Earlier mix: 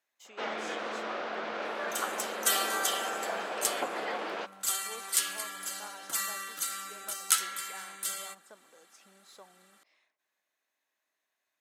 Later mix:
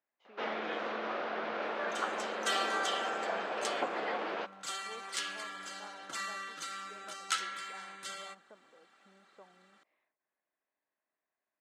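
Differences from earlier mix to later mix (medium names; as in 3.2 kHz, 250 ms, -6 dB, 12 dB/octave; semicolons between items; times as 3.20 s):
speech: add tape spacing loss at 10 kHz 39 dB; master: add distance through air 130 m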